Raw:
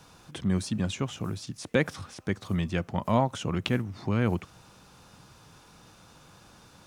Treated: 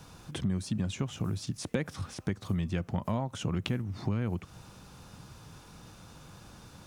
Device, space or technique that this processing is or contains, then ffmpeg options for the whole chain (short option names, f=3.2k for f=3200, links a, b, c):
ASMR close-microphone chain: -af "lowshelf=f=240:g=7.5,acompressor=threshold=-28dB:ratio=5,highshelf=f=9.5k:g=3.5"